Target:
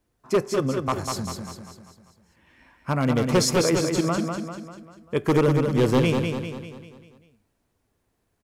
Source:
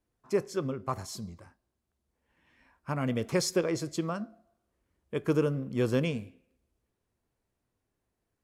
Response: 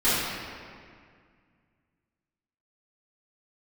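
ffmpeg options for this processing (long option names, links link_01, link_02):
-filter_complex "[0:a]aeval=exprs='0.0891*(abs(mod(val(0)/0.0891+3,4)-2)-1)':channel_layout=same,asplit=2[link_01][link_02];[link_02]aecho=0:1:197|394|591|788|985|1182:0.562|0.276|0.135|0.0662|0.0324|0.0159[link_03];[link_01][link_03]amix=inputs=2:normalize=0,volume=8dB"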